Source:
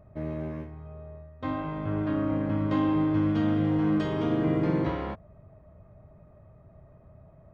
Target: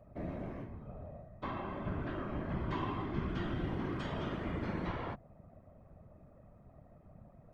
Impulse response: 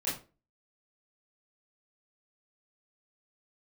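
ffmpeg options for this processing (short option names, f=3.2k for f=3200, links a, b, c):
-filter_complex "[0:a]acrossover=split=140|780|880[a][b][c][d];[b]acompressor=threshold=-37dB:ratio=8[e];[a][e][c][d]amix=inputs=4:normalize=0,afftfilt=real='hypot(re,im)*cos(2*PI*random(0))':imag='hypot(re,im)*sin(2*PI*random(1))':win_size=512:overlap=0.75,volume=1.5dB"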